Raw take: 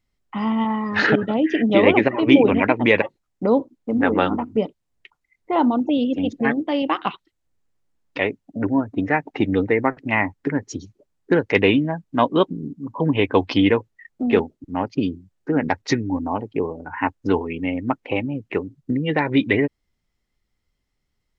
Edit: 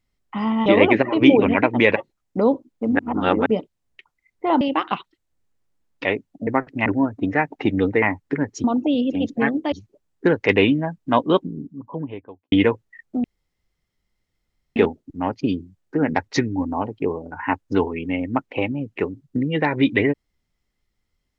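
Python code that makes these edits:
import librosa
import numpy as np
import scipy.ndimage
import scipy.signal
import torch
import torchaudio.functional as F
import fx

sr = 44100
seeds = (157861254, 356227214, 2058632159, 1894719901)

y = fx.studio_fade_out(x, sr, start_s=12.3, length_s=1.28)
y = fx.edit(y, sr, fx.cut(start_s=0.66, length_s=1.06),
    fx.reverse_span(start_s=4.05, length_s=0.47),
    fx.move(start_s=5.67, length_s=1.08, to_s=10.78),
    fx.move(start_s=9.77, length_s=0.39, to_s=8.61),
    fx.insert_room_tone(at_s=14.3, length_s=1.52), tone=tone)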